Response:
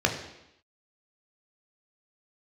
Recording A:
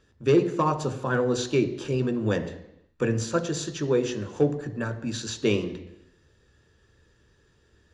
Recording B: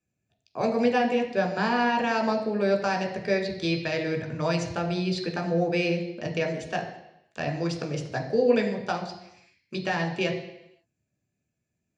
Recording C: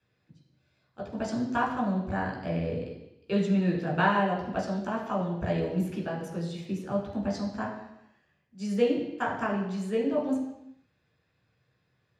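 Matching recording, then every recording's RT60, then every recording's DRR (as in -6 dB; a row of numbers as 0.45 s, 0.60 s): B; 0.85 s, 0.85 s, 0.85 s; 7.0 dB, 2.0 dB, -4.0 dB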